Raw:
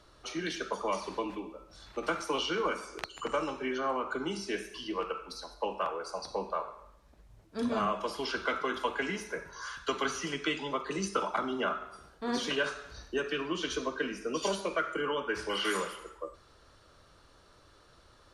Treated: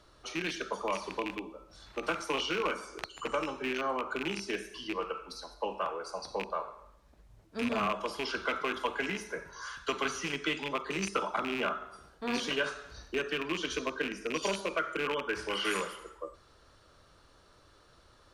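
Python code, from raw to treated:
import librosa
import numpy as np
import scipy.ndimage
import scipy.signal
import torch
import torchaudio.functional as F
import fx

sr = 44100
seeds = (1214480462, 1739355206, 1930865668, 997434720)

y = fx.rattle_buzz(x, sr, strikes_db=-41.0, level_db=-23.0)
y = y * librosa.db_to_amplitude(-1.0)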